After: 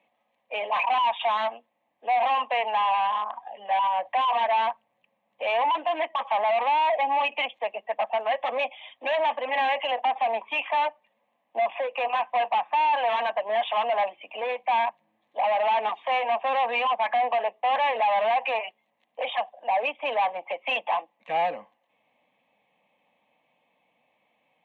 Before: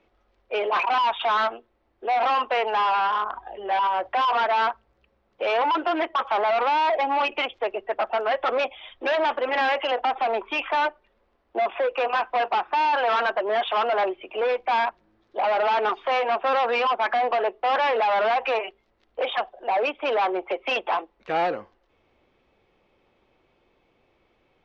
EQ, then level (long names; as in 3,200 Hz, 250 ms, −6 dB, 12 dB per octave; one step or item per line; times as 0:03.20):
high-pass filter 180 Hz 24 dB per octave
phaser with its sweep stopped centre 1,400 Hz, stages 6
0.0 dB